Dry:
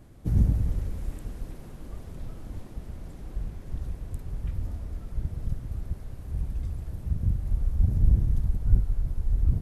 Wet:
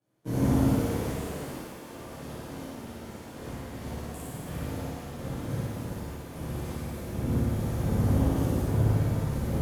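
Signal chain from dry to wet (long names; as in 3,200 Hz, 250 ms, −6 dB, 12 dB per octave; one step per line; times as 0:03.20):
power curve on the samples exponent 1.4
high-pass filter 230 Hz 12 dB per octave
flutter between parallel walls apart 9.6 metres, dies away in 1.1 s
leveller curve on the samples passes 3
reverb with rising layers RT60 1.4 s, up +7 semitones, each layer −8 dB, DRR −11.5 dB
level −7 dB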